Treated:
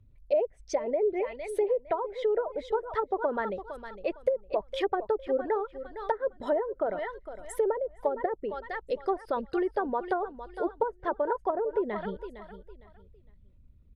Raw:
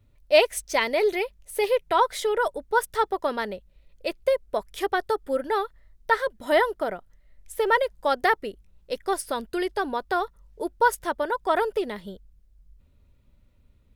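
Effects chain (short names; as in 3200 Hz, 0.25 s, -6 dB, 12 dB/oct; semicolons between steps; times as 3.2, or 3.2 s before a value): formant sharpening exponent 1.5; in parallel at -0.5 dB: compressor 10:1, threshold -34 dBFS, peak gain reduction 21.5 dB; on the sum: feedback echo 0.458 s, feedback 26%, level -13 dB; treble ducked by the level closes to 460 Hz, closed at -17 dBFS; gain -3.5 dB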